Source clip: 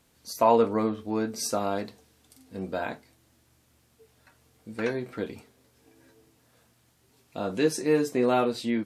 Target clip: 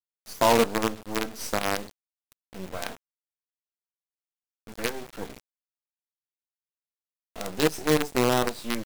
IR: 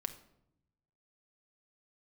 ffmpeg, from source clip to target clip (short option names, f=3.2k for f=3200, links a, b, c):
-af "adynamicequalizer=threshold=0.00891:dfrequency=1600:dqfactor=1.2:tfrequency=1600:tqfactor=1.2:attack=5:release=100:ratio=0.375:range=1.5:mode=cutabove:tftype=bell,acrusher=bits=4:dc=4:mix=0:aa=0.000001"